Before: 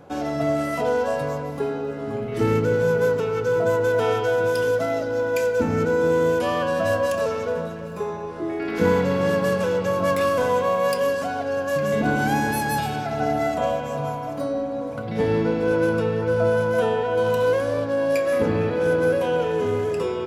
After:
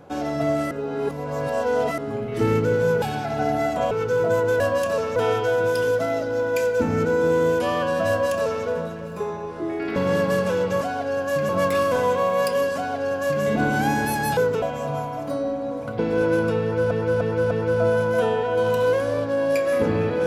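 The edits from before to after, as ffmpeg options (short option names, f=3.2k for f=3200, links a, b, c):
-filter_complex "[0:a]asplit=16[a][b][c][d][e][f][g][h][i][j][k][l][m][n][o][p];[a]atrim=end=0.712[q];[b]atrim=start=0.708:end=1.982,asetpts=PTS-STARTPTS,areverse[r];[c]atrim=start=1.978:end=3.022[s];[d]atrim=start=12.828:end=13.722[t];[e]atrim=start=3.268:end=3.962[u];[f]atrim=start=6.878:end=7.442[v];[g]atrim=start=3.958:end=8.762[w];[h]atrim=start=9.098:end=9.952[x];[i]atrim=start=11.208:end=11.892[y];[j]atrim=start=9.948:end=12.832[z];[k]atrim=start=3.018:end=3.272[aa];[l]atrim=start=13.718:end=15.092[ab];[m]atrim=start=15.488:end=16.412[ac];[n]atrim=start=16.108:end=16.412[ad];[o]atrim=start=16.108:end=16.412[ae];[p]atrim=start=16.108[af];[q][r]acrossfade=d=0.004:c1=hsin:c2=hsin[ag];[ag][s]acrossfade=d=0.004:c1=hsin:c2=hsin[ah];[ah][t]acrossfade=d=0.004:c1=hsin:c2=hsin[ai];[ai][u]acrossfade=d=0.004:c1=hsin:c2=hsin[aj];[aj][v]acrossfade=d=0.004:c1=hsin:c2=hsin[ak];[ak][w]acrossfade=d=0.004:c1=hsin:c2=hsin[al];[al][x]acrossfade=d=0.004:c1=hsin:c2=hsin[am];[am][y]acrossfade=d=0.004:c1=hsin:c2=hsin[an];[an][z]acrossfade=d=0.004:c1=hsin:c2=hsin[ao];[ao][aa]acrossfade=d=0.004:c1=hsin:c2=hsin[ap];[ap][ab]acrossfade=d=0.004:c1=hsin:c2=hsin[aq];[aq][ac]acrossfade=d=0.004:c1=hsin:c2=hsin[ar];[ar][ad]acrossfade=d=0.004:c1=hsin:c2=hsin[as];[as][ae]acrossfade=d=0.004:c1=hsin:c2=hsin[at];[at][af]acrossfade=d=0.004:c1=hsin:c2=hsin"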